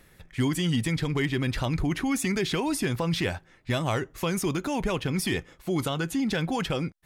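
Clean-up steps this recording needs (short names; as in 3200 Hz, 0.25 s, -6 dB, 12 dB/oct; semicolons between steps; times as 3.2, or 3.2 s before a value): clip repair -17 dBFS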